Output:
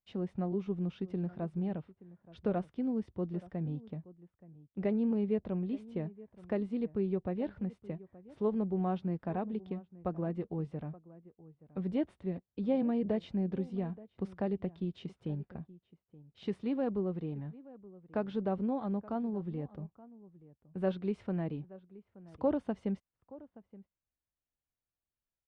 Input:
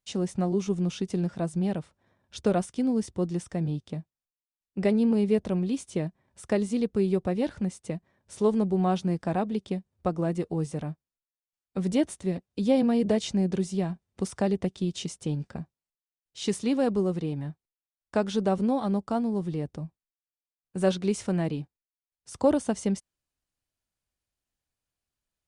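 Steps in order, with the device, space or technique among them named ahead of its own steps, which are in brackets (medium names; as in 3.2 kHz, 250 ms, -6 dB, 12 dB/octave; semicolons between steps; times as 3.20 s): shout across a valley (distance through air 420 m; echo from a far wall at 150 m, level -19 dB); trim -7 dB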